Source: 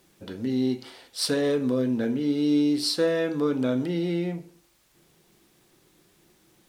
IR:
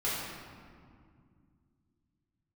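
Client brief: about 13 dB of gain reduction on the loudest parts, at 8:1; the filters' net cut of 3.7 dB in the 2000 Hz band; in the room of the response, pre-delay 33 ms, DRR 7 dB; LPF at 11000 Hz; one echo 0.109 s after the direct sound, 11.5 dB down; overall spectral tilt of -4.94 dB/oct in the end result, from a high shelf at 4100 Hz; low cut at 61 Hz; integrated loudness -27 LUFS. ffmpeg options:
-filter_complex "[0:a]highpass=61,lowpass=11k,equalizer=f=2k:t=o:g=-6.5,highshelf=f=4.1k:g=8.5,acompressor=threshold=-33dB:ratio=8,aecho=1:1:109:0.266,asplit=2[a][b];[1:a]atrim=start_sample=2205,adelay=33[c];[b][c]afir=irnorm=-1:irlink=0,volume=-15dB[d];[a][d]amix=inputs=2:normalize=0,volume=8.5dB"

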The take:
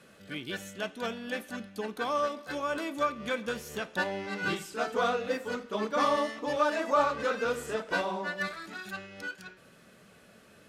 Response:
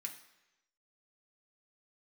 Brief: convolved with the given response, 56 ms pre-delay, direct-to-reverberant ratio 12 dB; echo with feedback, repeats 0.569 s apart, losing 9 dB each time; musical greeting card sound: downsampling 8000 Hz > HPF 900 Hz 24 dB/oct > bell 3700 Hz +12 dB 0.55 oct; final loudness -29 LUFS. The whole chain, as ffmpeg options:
-filter_complex "[0:a]aecho=1:1:569|1138|1707|2276:0.355|0.124|0.0435|0.0152,asplit=2[a][b];[1:a]atrim=start_sample=2205,adelay=56[c];[b][c]afir=irnorm=-1:irlink=0,volume=-9dB[d];[a][d]amix=inputs=2:normalize=0,aresample=8000,aresample=44100,highpass=f=900:w=0.5412,highpass=f=900:w=1.3066,equalizer=f=3.7k:t=o:w=0.55:g=12,volume=3.5dB"

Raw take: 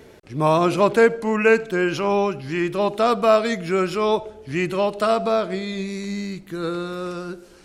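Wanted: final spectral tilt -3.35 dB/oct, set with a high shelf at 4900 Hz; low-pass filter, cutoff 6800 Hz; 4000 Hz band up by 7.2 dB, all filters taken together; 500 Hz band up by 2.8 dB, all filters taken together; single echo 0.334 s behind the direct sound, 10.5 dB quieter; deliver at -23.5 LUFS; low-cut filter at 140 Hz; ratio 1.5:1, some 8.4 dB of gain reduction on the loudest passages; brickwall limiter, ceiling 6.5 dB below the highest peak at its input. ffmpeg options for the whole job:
-af "highpass=140,lowpass=6.8k,equalizer=f=500:t=o:g=3.5,equalizer=f=4k:t=o:g=6,highshelf=f=4.9k:g=7.5,acompressor=threshold=-32dB:ratio=1.5,alimiter=limit=-16.5dB:level=0:latency=1,aecho=1:1:334:0.299,volume=3.5dB"

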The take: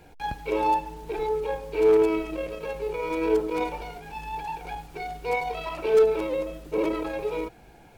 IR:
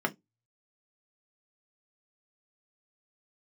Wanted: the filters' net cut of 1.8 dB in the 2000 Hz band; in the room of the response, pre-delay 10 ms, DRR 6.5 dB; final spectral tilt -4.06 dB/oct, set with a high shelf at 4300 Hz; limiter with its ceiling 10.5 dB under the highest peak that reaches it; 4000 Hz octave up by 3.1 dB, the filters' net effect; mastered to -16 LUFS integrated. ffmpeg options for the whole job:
-filter_complex "[0:a]equalizer=f=2k:t=o:g=-4.5,equalizer=f=4k:t=o:g=3.5,highshelf=f=4.3k:g=4,alimiter=limit=-22.5dB:level=0:latency=1,asplit=2[a][b];[1:a]atrim=start_sample=2205,adelay=10[c];[b][c]afir=irnorm=-1:irlink=0,volume=-15dB[d];[a][d]amix=inputs=2:normalize=0,volume=15dB"

